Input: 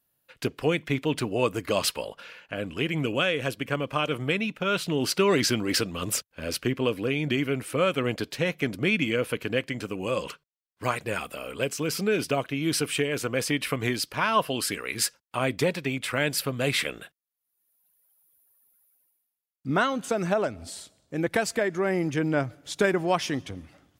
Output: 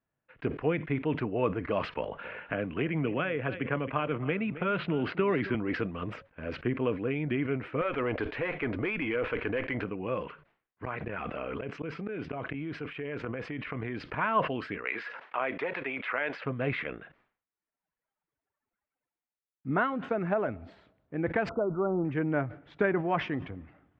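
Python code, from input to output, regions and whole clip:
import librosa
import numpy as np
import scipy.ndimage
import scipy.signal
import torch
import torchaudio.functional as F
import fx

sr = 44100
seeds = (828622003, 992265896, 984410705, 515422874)

y = fx.chain(x, sr, fx.lowpass(hz=4300.0, slope=24),
    fx.echo_single(ms=267, db=-18.0),
    fx.band_squash(depth_pct=70), at=(1.97, 5.55))
y = fx.chain(y, sr, fx.peak_eq(hz=170.0, db=-12.0, octaves=1.2),
    fx.tube_stage(drive_db=17.0, bias=0.25),
    fx.env_flatten(amount_pct=70), at=(7.81, 9.84))
y = fx.chain(y, sr, fx.gate_flip(shuts_db=-20.0, range_db=-28),
    fx.env_flatten(amount_pct=100), at=(10.84, 14.15))
y = fx.chain(y, sr, fx.bandpass_edges(low_hz=570.0, high_hz=5700.0),
    fx.env_flatten(amount_pct=70), at=(14.85, 16.44))
y = fx.chain(y, sr, fx.law_mismatch(coded='mu'),
    fx.brickwall_lowpass(high_hz=1500.0), at=(21.49, 22.05))
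y = scipy.signal.sosfilt(scipy.signal.butter(4, 2200.0, 'lowpass', fs=sr, output='sos'), y)
y = fx.notch(y, sr, hz=550.0, q=18.0)
y = fx.sustainer(y, sr, db_per_s=130.0)
y = y * 10.0 ** (-3.5 / 20.0)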